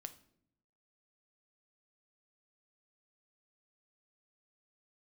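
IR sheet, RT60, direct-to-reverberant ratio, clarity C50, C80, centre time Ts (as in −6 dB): non-exponential decay, 9.0 dB, 15.0 dB, 19.0 dB, 5 ms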